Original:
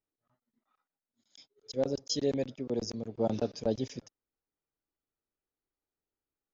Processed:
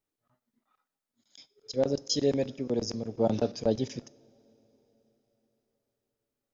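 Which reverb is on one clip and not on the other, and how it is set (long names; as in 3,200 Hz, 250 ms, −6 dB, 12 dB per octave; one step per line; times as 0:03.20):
coupled-rooms reverb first 0.54 s, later 4.4 s, from −18 dB, DRR 17 dB
level +3.5 dB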